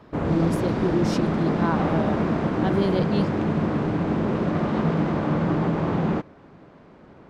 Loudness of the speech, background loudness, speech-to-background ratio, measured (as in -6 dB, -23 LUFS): -28.0 LUFS, -24.0 LUFS, -4.0 dB